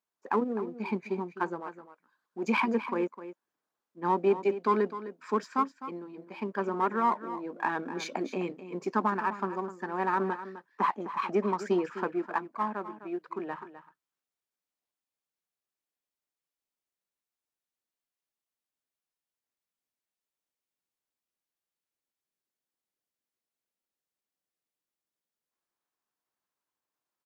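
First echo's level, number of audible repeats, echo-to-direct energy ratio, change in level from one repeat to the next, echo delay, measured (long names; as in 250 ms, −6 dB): −13.0 dB, 1, −13.0 dB, repeats not evenly spaced, 256 ms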